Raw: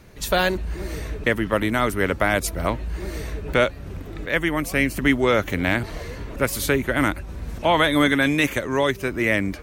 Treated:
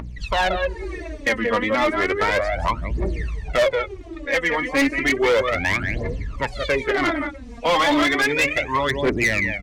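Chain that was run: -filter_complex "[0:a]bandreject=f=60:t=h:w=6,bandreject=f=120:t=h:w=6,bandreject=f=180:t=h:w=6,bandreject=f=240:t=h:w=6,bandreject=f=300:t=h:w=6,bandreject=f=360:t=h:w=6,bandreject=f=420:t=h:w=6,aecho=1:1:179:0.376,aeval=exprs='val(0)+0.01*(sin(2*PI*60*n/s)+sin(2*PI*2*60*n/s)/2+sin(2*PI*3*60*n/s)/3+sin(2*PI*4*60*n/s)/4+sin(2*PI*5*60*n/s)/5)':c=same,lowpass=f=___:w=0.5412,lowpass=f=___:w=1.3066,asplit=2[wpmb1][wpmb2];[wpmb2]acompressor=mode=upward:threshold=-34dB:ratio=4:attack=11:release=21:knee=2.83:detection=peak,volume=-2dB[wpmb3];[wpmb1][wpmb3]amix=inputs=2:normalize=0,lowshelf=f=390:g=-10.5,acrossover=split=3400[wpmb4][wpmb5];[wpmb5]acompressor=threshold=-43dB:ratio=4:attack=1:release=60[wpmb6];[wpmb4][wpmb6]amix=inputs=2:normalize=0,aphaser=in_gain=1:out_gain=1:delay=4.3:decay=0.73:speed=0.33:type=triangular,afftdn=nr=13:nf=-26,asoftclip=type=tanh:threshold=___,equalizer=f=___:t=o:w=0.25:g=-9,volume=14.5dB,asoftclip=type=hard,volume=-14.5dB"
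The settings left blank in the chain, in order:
8.2k, 8.2k, -10.5dB, 1.5k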